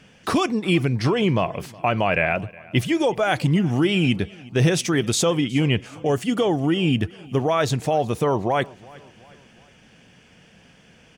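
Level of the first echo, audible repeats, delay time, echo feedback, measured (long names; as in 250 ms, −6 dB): −23.0 dB, 2, 365 ms, 47%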